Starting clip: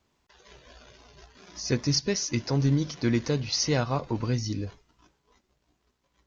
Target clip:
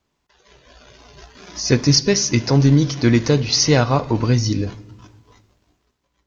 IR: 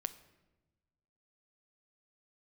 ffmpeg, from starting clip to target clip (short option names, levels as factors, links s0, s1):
-filter_complex "[0:a]dynaudnorm=f=210:g=9:m=5.62,asplit=2[s0][s1];[1:a]atrim=start_sample=2205[s2];[s1][s2]afir=irnorm=-1:irlink=0,volume=1.78[s3];[s0][s3]amix=inputs=2:normalize=0,volume=0.376"